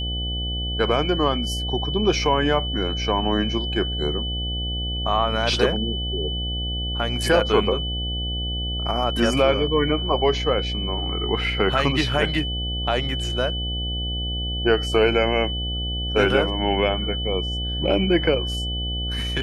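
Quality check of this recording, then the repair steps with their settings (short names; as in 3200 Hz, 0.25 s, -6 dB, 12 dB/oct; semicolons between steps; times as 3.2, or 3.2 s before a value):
buzz 60 Hz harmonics 13 -28 dBFS
tone 3000 Hz -28 dBFS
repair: notch 3000 Hz, Q 30; de-hum 60 Hz, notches 13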